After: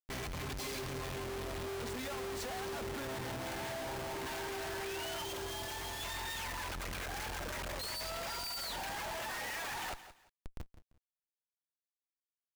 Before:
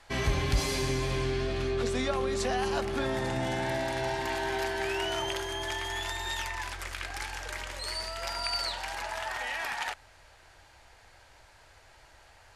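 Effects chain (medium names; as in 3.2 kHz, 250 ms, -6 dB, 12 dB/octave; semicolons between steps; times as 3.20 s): 3.83–4.27 s: treble shelf 2.8 kHz -11.5 dB; delay 785 ms -23.5 dB; peak limiter -23 dBFS, peak gain reduction 8 dB; reverb removal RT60 1.2 s; Schmitt trigger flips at -46.5 dBFS; 5.23–6.01 s: peaking EQ 1.9 kHz -5 dB 1 oct; bit-crushed delay 171 ms, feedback 35%, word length 9-bit, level -13 dB; trim -3 dB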